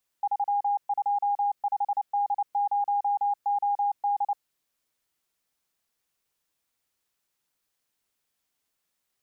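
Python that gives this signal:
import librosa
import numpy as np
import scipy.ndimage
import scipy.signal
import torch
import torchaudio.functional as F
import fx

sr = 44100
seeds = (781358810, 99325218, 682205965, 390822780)

y = fx.morse(sr, text='325D0OD', wpm=29, hz=814.0, level_db=-22.0)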